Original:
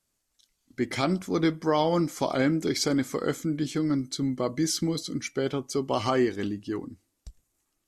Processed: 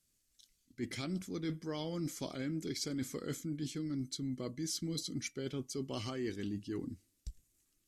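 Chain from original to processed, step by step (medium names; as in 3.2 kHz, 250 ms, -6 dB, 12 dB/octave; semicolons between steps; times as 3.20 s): peaking EQ 860 Hz -14 dB 1.7 oct; reverse; compression 6:1, threshold -37 dBFS, peak gain reduction 13.5 dB; reverse; trim +1 dB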